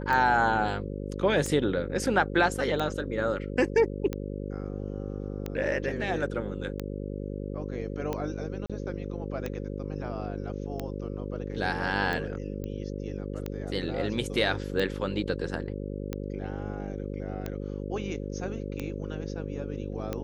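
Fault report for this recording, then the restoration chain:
buzz 50 Hz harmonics 11 -35 dBFS
tick 45 rpm -18 dBFS
8.66–8.70 s: dropout 36 ms
12.64 s: pop -24 dBFS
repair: de-click; de-hum 50 Hz, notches 11; interpolate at 8.66 s, 36 ms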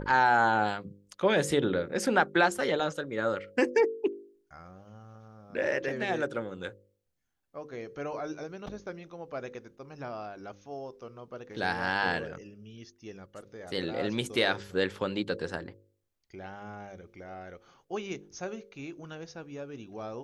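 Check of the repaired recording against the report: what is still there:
nothing left

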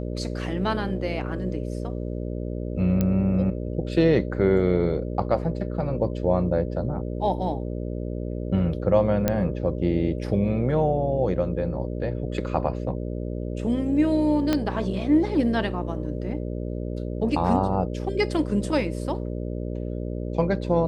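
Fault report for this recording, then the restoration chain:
buzz 60 Hz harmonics 10 -30 dBFS
3.01 s: pop -11 dBFS
9.28 s: pop -8 dBFS
14.53 s: pop -9 dBFS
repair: de-click; de-hum 60 Hz, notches 10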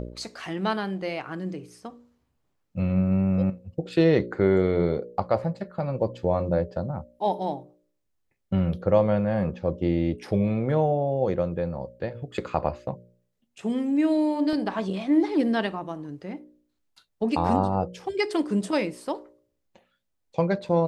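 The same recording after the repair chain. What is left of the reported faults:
14.53 s: pop

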